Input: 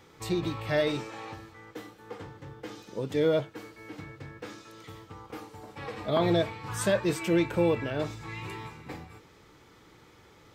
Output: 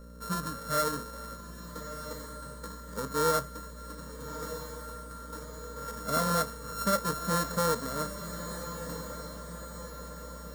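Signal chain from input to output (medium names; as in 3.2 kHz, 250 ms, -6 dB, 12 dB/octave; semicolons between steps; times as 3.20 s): sorted samples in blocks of 32 samples; mains buzz 60 Hz, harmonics 10, -44 dBFS -6 dB/octave; static phaser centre 520 Hz, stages 8; echo that smears into a reverb 1264 ms, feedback 56%, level -10 dB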